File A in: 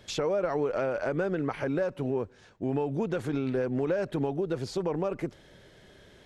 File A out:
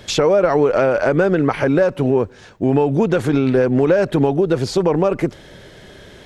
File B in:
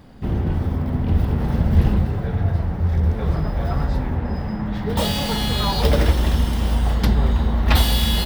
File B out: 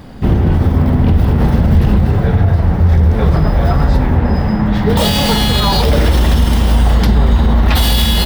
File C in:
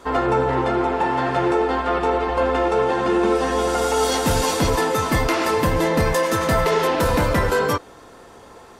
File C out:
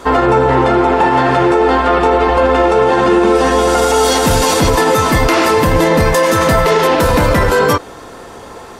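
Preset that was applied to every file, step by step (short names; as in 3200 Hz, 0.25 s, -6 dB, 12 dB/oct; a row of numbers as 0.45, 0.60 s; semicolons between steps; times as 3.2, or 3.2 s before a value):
limiter -14.5 dBFS; normalise peaks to -3 dBFS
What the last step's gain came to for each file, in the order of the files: +13.5, +11.5, +11.5 dB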